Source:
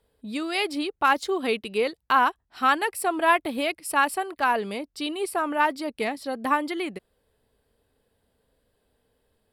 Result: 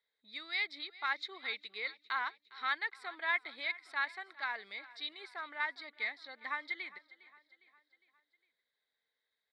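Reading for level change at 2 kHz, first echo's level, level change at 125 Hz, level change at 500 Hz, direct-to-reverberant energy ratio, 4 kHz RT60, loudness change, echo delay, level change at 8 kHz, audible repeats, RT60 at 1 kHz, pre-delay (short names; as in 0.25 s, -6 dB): -8.0 dB, -19.5 dB, n/a, -25.0 dB, none, none, -12.5 dB, 0.407 s, under -30 dB, 3, none, none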